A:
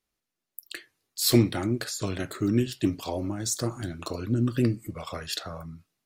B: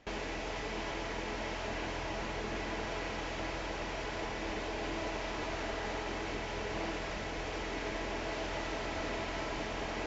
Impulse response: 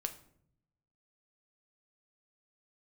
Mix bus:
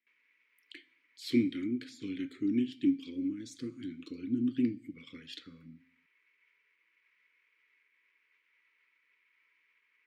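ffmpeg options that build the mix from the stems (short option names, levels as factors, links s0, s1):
-filter_complex "[0:a]asplit=3[s0][s1][s2];[s0]bandpass=f=270:t=q:w=8,volume=1[s3];[s1]bandpass=f=2290:t=q:w=8,volume=0.501[s4];[s2]bandpass=f=3010:t=q:w=8,volume=0.355[s5];[s3][s4][s5]amix=inputs=3:normalize=0,bandreject=f=260.4:t=h:w=4,bandreject=f=520.8:t=h:w=4,bandreject=f=781.2:t=h:w=4,bandreject=f=1041.6:t=h:w=4,bandreject=f=1302:t=h:w=4,bandreject=f=1562.4:t=h:w=4,bandreject=f=1822.8:t=h:w=4,bandreject=f=2083.2:t=h:w=4,bandreject=f=2343.6:t=h:w=4,bandreject=f=2604:t=h:w=4,bandreject=f=2864.4:t=h:w=4,bandreject=f=3124.8:t=h:w=4,bandreject=f=3385.2:t=h:w=4,bandreject=f=3645.6:t=h:w=4,bandreject=f=3906:t=h:w=4,bandreject=f=4166.4:t=h:w=4,bandreject=f=4426.8:t=h:w=4,bandreject=f=4687.2:t=h:w=4,bandreject=f=4947.6:t=h:w=4,bandreject=f=5208:t=h:w=4,bandreject=f=5468.4:t=h:w=4,bandreject=f=5728.8:t=h:w=4,bandreject=f=5989.2:t=h:w=4,bandreject=f=6249.6:t=h:w=4,bandreject=f=6510:t=h:w=4,bandreject=f=6770.4:t=h:w=4,bandreject=f=7030.8:t=h:w=4,bandreject=f=7291.2:t=h:w=4,bandreject=f=7551.6:t=h:w=4,bandreject=f=7812:t=h:w=4,bandreject=f=8072.4:t=h:w=4,bandreject=f=8332.8:t=h:w=4,bandreject=f=8593.2:t=h:w=4,bandreject=f=8853.6:t=h:w=4,bandreject=f=9114:t=h:w=4,bandreject=f=9374.4:t=h:w=4,bandreject=f=9634.8:t=h:w=4,bandreject=f=9895.2:t=h:w=4,bandreject=f=10155.6:t=h:w=4,volume=1.12,asplit=3[s6][s7][s8];[s7]volume=0.282[s9];[1:a]aeval=exprs='clip(val(0),-1,0.0119)':c=same,alimiter=level_in=3.55:limit=0.0631:level=0:latency=1:release=121,volume=0.282,bandpass=f=2200:t=q:w=6.1:csg=0,volume=0.168[s10];[s8]apad=whole_len=443647[s11];[s10][s11]sidechaincompress=threshold=0.00112:ratio=8:attack=16:release=131[s12];[2:a]atrim=start_sample=2205[s13];[s9][s13]afir=irnorm=-1:irlink=0[s14];[s6][s12][s14]amix=inputs=3:normalize=0,asuperstop=centerf=700:order=20:qfactor=2"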